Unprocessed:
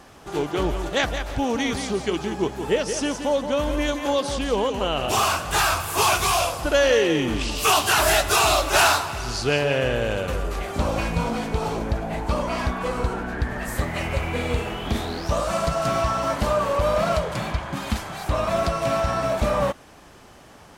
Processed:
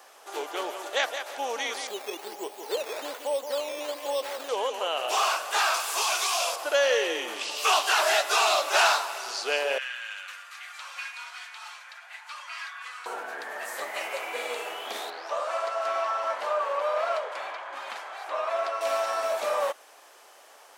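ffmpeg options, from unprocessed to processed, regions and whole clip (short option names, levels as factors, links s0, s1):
-filter_complex "[0:a]asettb=1/sr,asplit=3[s0][s1][s2];[s0]atrim=end=1.874[s3];[s1]atrim=start=1.87:end=4.49,asetpts=PTS-STARTPTS,afade=t=in:d=0.004:c=qsin,afade=t=out:st=2.616:d=0.004:c=qsin,equalizer=f=1600:t=o:w=1:g=-13.5,acrusher=samples=10:mix=1:aa=0.000001:lfo=1:lforange=10:lforate=1.2[s4];[s2]atrim=start=4.486[s5];[s3][s4]acrossfade=d=0.004:c1=hsin:c2=qsin[s6];[s6][s5]acrossfade=d=0.004:c1=qsin:c2=hsin,asettb=1/sr,asplit=3[s7][s8][s9];[s7]atrim=end=5.744[s10];[s8]atrim=start=5.74:end=6.56,asetpts=PTS-STARTPTS,afade=t=in:d=0.004:c=qsin,afade=t=out:st=0.816:d=0.004:c=qsin,highshelf=f=4100:g=12,acompressor=threshold=0.141:ratio=6:attack=3.2:release=140:knee=1:detection=peak[s11];[s9]atrim=start=6.556[s12];[s10][s11]acrossfade=d=0.004:c1=hsin:c2=qsin[s13];[s13][s12]acrossfade=d=0.004:c1=qsin:c2=hsin,asettb=1/sr,asplit=3[s14][s15][s16];[s14]atrim=end=9.784[s17];[s15]atrim=start=9.78:end=13.06,asetpts=PTS-STARTPTS,afade=t=in:d=0.004:c=qsin,afade=t=out:st=3.276:d=0.004:c=qsin,highpass=f=1400:w=0.5412,highpass=f=1400:w=1.3066,aemphasis=mode=reproduction:type=50fm,aecho=1:1:5.6:0.41,atrim=end_sample=144648[s18];[s16]atrim=start=13.056[s19];[s17][s18]acrossfade=d=0.004:c1=hsin:c2=qsin[s20];[s20][s19]acrossfade=d=0.004:c1=qsin:c2=hsin,asettb=1/sr,asplit=3[s21][s22][s23];[s21]atrim=end=15.104[s24];[s22]atrim=start=15.1:end=18.81,asetpts=PTS-STARTPTS,afade=t=in:d=0.004:c=qsin,afade=t=out:st=3.706:d=0.004:c=qsin,lowpass=1900,aemphasis=mode=production:type=riaa[s25];[s23]atrim=start=18.806[s26];[s24][s25]acrossfade=d=0.004:c1=hsin:c2=qsin[s27];[s27][s26]acrossfade=d=0.004:c1=qsin:c2=hsin,highpass=f=480:w=0.5412,highpass=f=480:w=1.3066,acrossover=split=6600[s28][s29];[s29]acompressor=threshold=0.00562:ratio=4:attack=1:release=60[s30];[s28][s30]amix=inputs=2:normalize=0,highshelf=f=8700:g=8.5,volume=0.668"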